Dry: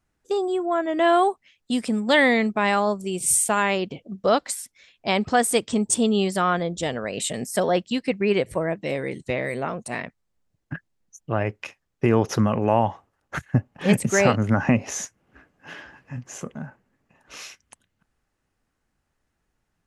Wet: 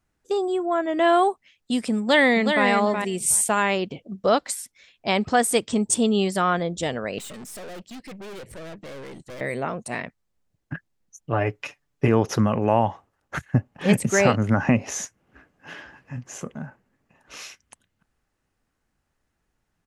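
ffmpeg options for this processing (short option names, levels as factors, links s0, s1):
-filter_complex "[0:a]asplit=2[s0][s1];[s1]afade=t=in:st=1.99:d=0.01,afade=t=out:st=2.67:d=0.01,aecho=0:1:370|740:0.530884|0.0530884[s2];[s0][s2]amix=inputs=2:normalize=0,asettb=1/sr,asplit=3[s3][s4][s5];[s3]atrim=end=7.184[s6];[s4]atrim=start=7.18:end=9.41,asetpts=PTS-STARTPTS,afade=t=in:d=0.004:c=qsin,afade=t=out:st=2.226:d=0.004:c=qsin,aeval=exprs='(tanh(70.8*val(0)+0.35)-tanh(0.35))/70.8':c=same[s7];[s5]atrim=start=9.406[s8];[s6][s7]acrossfade=d=0.004:c1=hsin:c2=qsin[s9];[s9][s8]acrossfade=d=0.004:c1=qsin:c2=hsin,asettb=1/sr,asplit=3[s10][s11][s12];[s10]atrim=end=11.324[s13];[s11]atrim=start=11.32:end=12.08,asetpts=PTS-STARTPTS,afade=t=in:d=0.004:c=qsin,afade=t=out:st=0.756:d=0.004:c=qsin,aecho=1:1:6.9:0.65,atrim=end_sample=33516[s14];[s12]atrim=start=12.076[s15];[s13][s14]acrossfade=d=0.004:c1=hsin:c2=qsin[s16];[s16][s15]acrossfade=d=0.004:c1=qsin:c2=hsin"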